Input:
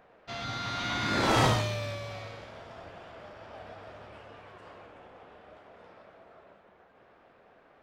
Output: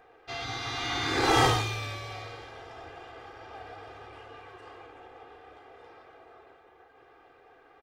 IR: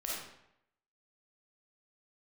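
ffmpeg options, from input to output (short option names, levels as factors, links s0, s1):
-af "lowshelf=f=210:g=-3.5,aecho=1:1:2.5:0.9"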